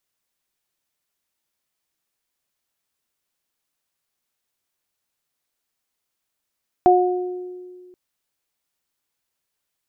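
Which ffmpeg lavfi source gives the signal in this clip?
-f lavfi -i "aevalsrc='0.237*pow(10,-3*t/2.01)*sin(2*PI*362*t)+0.335*pow(10,-3*t/0.86)*sin(2*PI*724*t)':d=1.08:s=44100"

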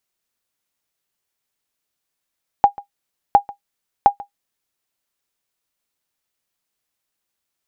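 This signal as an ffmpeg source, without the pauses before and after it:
-f lavfi -i "aevalsrc='0.891*(sin(2*PI*810*mod(t,0.71))*exp(-6.91*mod(t,0.71)/0.11)+0.0841*sin(2*PI*810*max(mod(t,0.71)-0.14,0))*exp(-6.91*max(mod(t,0.71)-0.14,0)/0.11))':d=2.13:s=44100"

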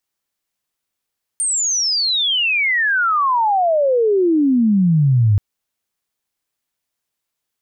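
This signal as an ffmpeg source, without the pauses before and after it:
-f lavfi -i "aevalsrc='pow(10,(-16+6*t/3.98)/20)*sin(2*PI*9000*3.98/log(98/9000)*(exp(log(98/9000)*t/3.98)-1))':d=3.98:s=44100"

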